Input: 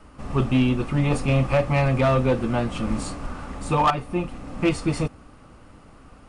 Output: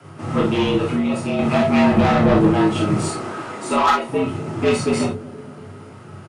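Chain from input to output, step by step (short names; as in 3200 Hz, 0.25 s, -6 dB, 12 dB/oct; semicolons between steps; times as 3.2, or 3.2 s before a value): 0.89–1.39 compressor 3:1, threshold -28 dBFS, peak gain reduction 9 dB; 1.91–2.49 low shelf 360 Hz +11 dB; 3.03–4.08 HPF 170 Hz 12 dB/oct; frequency shift +94 Hz; soft clip -18 dBFS, distortion -7 dB; doubler 30 ms -11 dB; analogue delay 0.236 s, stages 1024, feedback 58%, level -16 dB; non-linear reverb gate 80 ms flat, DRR -1.5 dB; gain +3.5 dB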